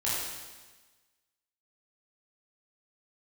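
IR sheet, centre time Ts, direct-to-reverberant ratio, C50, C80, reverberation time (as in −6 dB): 97 ms, −9.0 dB, −2.0 dB, 1.0 dB, 1.3 s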